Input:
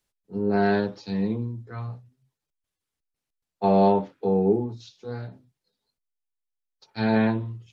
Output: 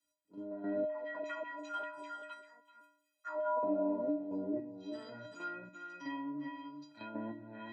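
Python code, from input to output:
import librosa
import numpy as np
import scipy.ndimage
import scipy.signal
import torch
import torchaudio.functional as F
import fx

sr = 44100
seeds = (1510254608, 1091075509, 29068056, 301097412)

y = fx.echo_pitch(x, sr, ms=481, semitones=4, count=3, db_per_echo=-3.0)
y = y + 10.0 ** (-11.0 / 20.0) * np.pad(y, (int(385 * sr / 1000.0), 0))[:len(y)]
y = fx.filter_lfo_highpass(y, sr, shape='saw_down', hz=5.1, low_hz=470.0, high_hz=3100.0, q=2.4, at=(0.85, 3.63))
y = fx.transient(y, sr, attack_db=-9, sustain_db=7)
y = fx.env_lowpass_down(y, sr, base_hz=710.0, full_db=-20.5)
y = fx.level_steps(y, sr, step_db=11)
y = scipy.signal.sosfilt(scipy.signal.butter(2, 95.0, 'highpass', fs=sr, output='sos'), y)
y = fx.stiff_resonator(y, sr, f0_hz=290.0, decay_s=0.76, stiffness=0.03)
y = fx.band_squash(y, sr, depth_pct=40)
y = F.gain(torch.from_numpy(y), 12.0).numpy()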